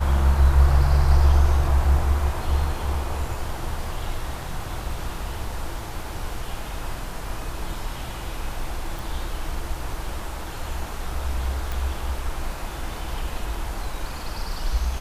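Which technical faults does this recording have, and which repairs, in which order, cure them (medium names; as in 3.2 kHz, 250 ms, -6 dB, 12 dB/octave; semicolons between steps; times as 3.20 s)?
8.99 s: pop
11.72 s: pop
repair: de-click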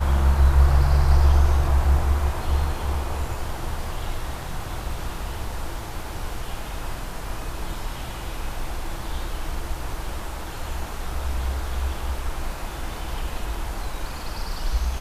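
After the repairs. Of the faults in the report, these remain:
nothing left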